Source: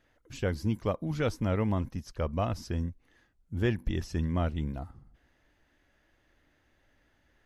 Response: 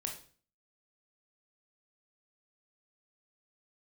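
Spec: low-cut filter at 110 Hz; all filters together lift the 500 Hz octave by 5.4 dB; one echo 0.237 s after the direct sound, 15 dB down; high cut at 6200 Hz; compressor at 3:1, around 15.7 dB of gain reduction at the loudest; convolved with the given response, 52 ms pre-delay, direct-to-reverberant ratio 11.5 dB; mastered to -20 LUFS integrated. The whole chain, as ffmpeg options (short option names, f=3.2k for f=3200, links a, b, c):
-filter_complex "[0:a]highpass=110,lowpass=6.2k,equalizer=f=500:t=o:g=6.5,acompressor=threshold=-43dB:ratio=3,aecho=1:1:237:0.178,asplit=2[a][b];[1:a]atrim=start_sample=2205,adelay=52[c];[b][c]afir=irnorm=-1:irlink=0,volume=-11.5dB[d];[a][d]amix=inputs=2:normalize=0,volume=24dB"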